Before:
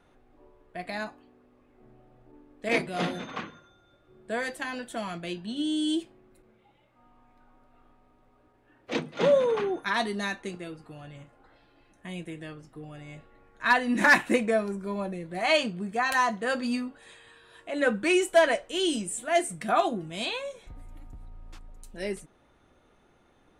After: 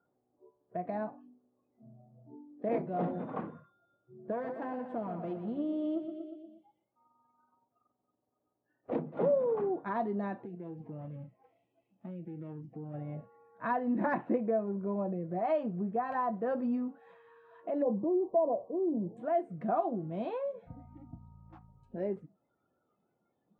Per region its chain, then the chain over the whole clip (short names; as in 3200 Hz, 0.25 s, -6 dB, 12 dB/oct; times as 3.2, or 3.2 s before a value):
4.32–8.92 half-wave gain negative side -12 dB + feedback echo 0.119 s, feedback 57%, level -9.5 dB
10.43–12.94 minimum comb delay 0.34 ms + compressor 8:1, threshold -44 dBFS
17.82–19.17 brick-wall FIR low-pass 1200 Hz + transient shaper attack -1 dB, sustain +4 dB
whole clip: Chebyshev band-pass 130–760 Hz, order 2; spectral noise reduction 20 dB; compressor 2:1, threshold -42 dBFS; gain +6 dB